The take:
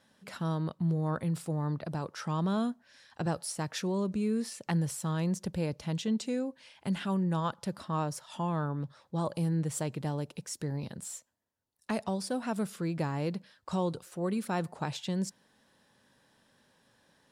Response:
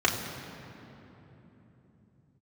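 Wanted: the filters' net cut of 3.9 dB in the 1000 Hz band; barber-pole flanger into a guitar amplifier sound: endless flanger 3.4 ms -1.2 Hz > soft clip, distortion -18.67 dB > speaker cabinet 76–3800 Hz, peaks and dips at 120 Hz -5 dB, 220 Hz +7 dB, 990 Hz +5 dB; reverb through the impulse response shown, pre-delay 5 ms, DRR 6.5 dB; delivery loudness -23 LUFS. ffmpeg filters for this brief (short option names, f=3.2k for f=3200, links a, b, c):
-filter_complex "[0:a]equalizer=f=1k:t=o:g=-8,asplit=2[a][b];[1:a]atrim=start_sample=2205,adelay=5[c];[b][c]afir=irnorm=-1:irlink=0,volume=-20.5dB[d];[a][d]amix=inputs=2:normalize=0,asplit=2[e][f];[f]adelay=3.4,afreqshift=-1.2[g];[e][g]amix=inputs=2:normalize=1,asoftclip=threshold=-25.5dB,highpass=76,equalizer=f=120:t=q:w=4:g=-5,equalizer=f=220:t=q:w=4:g=7,equalizer=f=990:t=q:w=4:g=5,lowpass=f=3.8k:w=0.5412,lowpass=f=3.8k:w=1.3066,volume=12.5dB"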